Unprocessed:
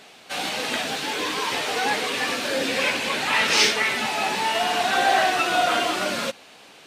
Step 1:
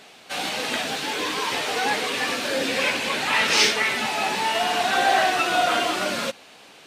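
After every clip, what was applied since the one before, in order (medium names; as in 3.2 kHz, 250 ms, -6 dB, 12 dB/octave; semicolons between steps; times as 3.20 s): no audible change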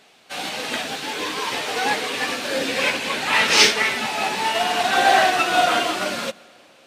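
reverberation RT60 3.0 s, pre-delay 83 ms, DRR 17 dB; upward expansion 1.5:1, over -37 dBFS; trim +5 dB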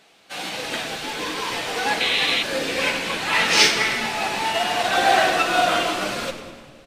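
on a send: frequency-shifting echo 100 ms, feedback 63%, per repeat -100 Hz, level -13.5 dB; on the sum: simulated room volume 1400 m³, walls mixed, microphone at 0.73 m; painted sound noise, 2.00–2.43 s, 1.9–4.2 kHz -20 dBFS; trim -2 dB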